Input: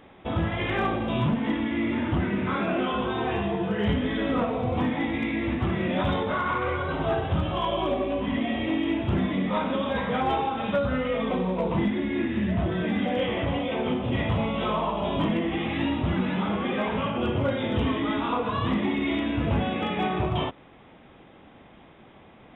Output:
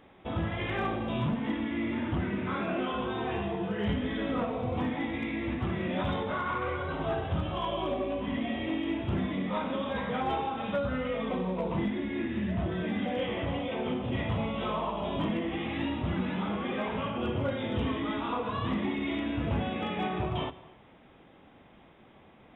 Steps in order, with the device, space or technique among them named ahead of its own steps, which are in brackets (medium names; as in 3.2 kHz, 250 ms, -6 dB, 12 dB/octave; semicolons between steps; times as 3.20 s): compressed reverb return (on a send at -13.5 dB: reverberation RT60 0.80 s, pre-delay 78 ms + compression, threshold -25 dBFS, peak gain reduction 7.5 dB); on the sum: trim -5.5 dB